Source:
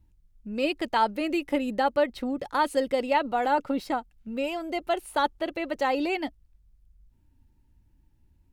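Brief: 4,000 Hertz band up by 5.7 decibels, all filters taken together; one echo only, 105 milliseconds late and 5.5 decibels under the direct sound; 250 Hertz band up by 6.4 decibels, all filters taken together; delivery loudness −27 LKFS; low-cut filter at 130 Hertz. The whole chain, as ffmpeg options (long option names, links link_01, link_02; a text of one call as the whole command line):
ffmpeg -i in.wav -af "highpass=130,equalizer=frequency=250:width_type=o:gain=8,equalizer=frequency=4000:width_type=o:gain=7.5,aecho=1:1:105:0.531,volume=-3.5dB" out.wav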